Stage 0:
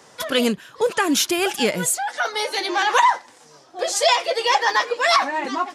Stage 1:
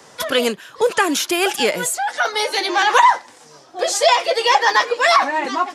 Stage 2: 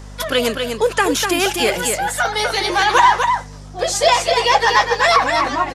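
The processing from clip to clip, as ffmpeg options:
-filter_complex "[0:a]acrossover=split=310|880|2000[a][b][c][d];[a]acompressor=threshold=-39dB:ratio=6[e];[d]alimiter=limit=-15dB:level=0:latency=1:release=131[f];[e][b][c][f]amix=inputs=4:normalize=0,volume=4dB"
-af "aeval=exprs='val(0)+0.02*(sin(2*PI*50*n/s)+sin(2*PI*2*50*n/s)/2+sin(2*PI*3*50*n/s)/3+sin(2*PI*4*50*n/s)/4+sin(2*PI*5*50*n/s)/5)':c=same,asoftclip=type=hard:threshold=-4dB,aecho=1:1:247:0.531"

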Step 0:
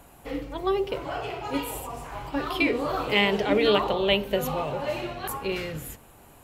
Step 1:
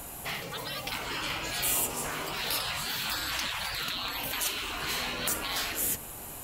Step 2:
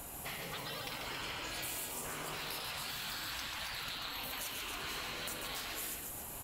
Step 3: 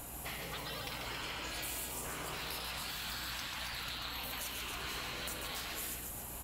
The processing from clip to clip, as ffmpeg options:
-filter_complex "[0:a]asplit=2[a][b];[b]alimiter=limit=-16dB:level=0:latency=1,volume=-0.5dB[c];[a][c]amix=inputs=2:normalize=0,highshelf=f=3.6k:g=11.5,afftfilt=real='re*lt(hypot(re,im),0.1)':imag='im*lt(hypot(re,im),0.1)':win_size=1024:overlap=0.75"
-filter_complex "[0:a]acompressor=threshold=-35dB:ratio=6,asplit=2[a][b];[b]aecho=0:1:139.9|274.1:0.562|0.501[c];[a][c]amix=inputs=2:normalize=0,volume=-5dB"
-af "aeval=exprs='val(0)+0.00251*(sin(2*PI*60*n/s)+sin(2*PI*2*60*n/s)/2+sin(2*PI*3*60*n/s)/3+sin(2*PI*4*60*n/s)/4+sin(2*PI*5*60*n/s)/5)':c=same"

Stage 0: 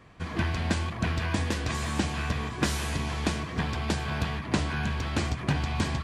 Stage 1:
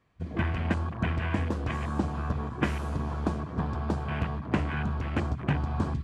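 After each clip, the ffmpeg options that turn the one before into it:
-af "afwtdn=0.0224"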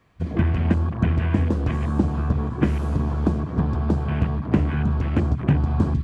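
-filter_complex "[0:a]acrossover=split=470[a][b];[b]acompressor=threshold=-50dB:ratio=2[c];[a][c]amix=inputs=2:normalize=0,volume=9dB"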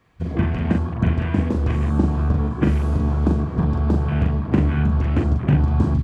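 -filter_complex "[0:a]asplit=2[a][b];[b]adelay=41,volume=-4dB[c];[a][c]amix=inputs=2:normalize=0"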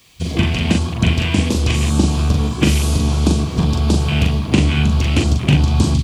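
-af "aexciter=amount=7:drive=7.7:freq=2.5k,volume=3.5dB"

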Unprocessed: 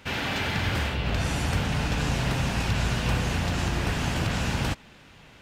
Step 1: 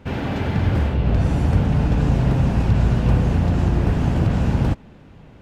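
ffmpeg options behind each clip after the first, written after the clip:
-af "tiltshelf=f=1.1k:g=10"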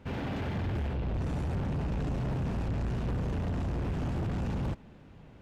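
-af "asoftclip=type=tanh:threshold=-21dB,volume=-7.5dB"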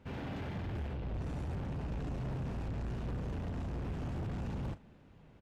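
-filter_complex "[0:a]asplit=2[a][b];[b]adelay=38,volume=-14dB[c];[a][c]amix=inputs=2:normalize=0,volume=-6.5dB"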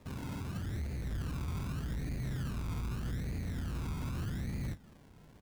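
-filter_complex "[0:a]acrossover=split=360[a][b];[b]acompressor=threshold=-56dB:ratio=6[c];[a][c]amix=inputs=2:normalize=0,acrusher=samples=29:mix=1:aa=0.000001:lfo=1:lforange=17.4:lforate=0.82,volume=1.5dB"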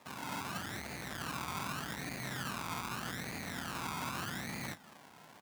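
-af "highpass=220,lowshelf=f=590:t=q:w=1.5:g=-7.5,dynaudnorm=f=180:g=3:m=4.5dB,volume=4.5dB"

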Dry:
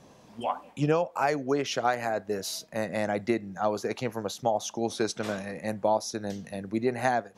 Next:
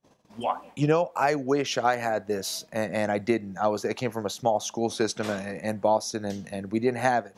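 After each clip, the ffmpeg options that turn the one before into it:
-af "agate=range=-31dB:threshold=-52dB:ratio=16:detection=peak,volume=2.5dB"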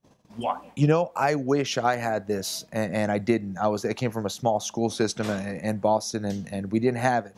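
-af "bass=f=250:g=6,treble=f=4k:g=1"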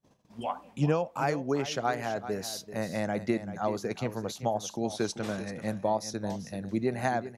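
-af "aecho=1:1:387:0.237,volume=-6dB"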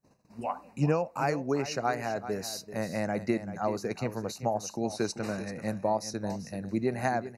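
-af "asuperstop=centerf=3300:order=8:qfactor=3.6"

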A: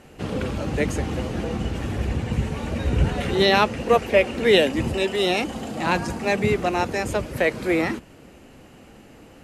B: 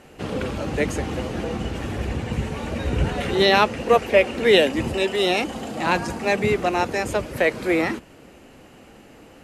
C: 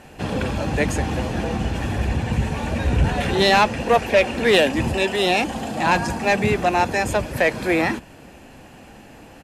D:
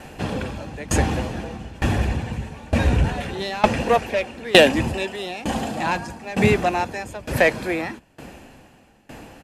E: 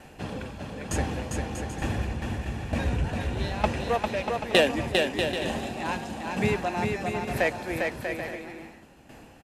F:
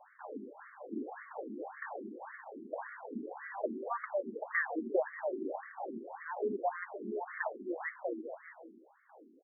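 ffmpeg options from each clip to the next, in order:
-af "bass=f=250:g=-4,treble=f=4k:g=-1,volume=1.5dB"
-af "aecho=1:1:1.2:0.34,asoftclip=type=tanh:threshold=-12dB,volume=3.5dB"
-af "aeval=exprs='val(0)*pow(10,-22*if(lt(mod(1.1*n/s,1),2*abs(1.1)/1000),1-mod(1.1*n/s,1)/(2*abs(1.1)/1000),(mod(1.1*n/s,1)-2*abs(1.1)/1000)/(1-2*abs(1.1)/1000))/20)':c=same,volume=6dB"
-af "aecho=1:1:400|640|784|870.4|922.2:0.631|0.398|0.251|0.158|0.1,volume=-8.5dB"
-af "highpass=200,afftfilt=real='re*between(b*sr/1024,280*pow(1600/280,0.5+0.5*sin(2*PI*1.8*pts/sr))/1.41,280*pow(1600/280,0.5+0.5*sin(2*PI*1.8*pts/sr))*1.41)':imag='im*between(b*sr/1024,280*pow(1600/280,0.5+0.5*sin(2*PI*1.8*pts/sr))/1.41,280*pow(1600/280,0.5+0.5*sin(2*PI*1.8*pts/sr))*1.41)':win_size=1024:overlap=0.75,volume=-2.5dB"

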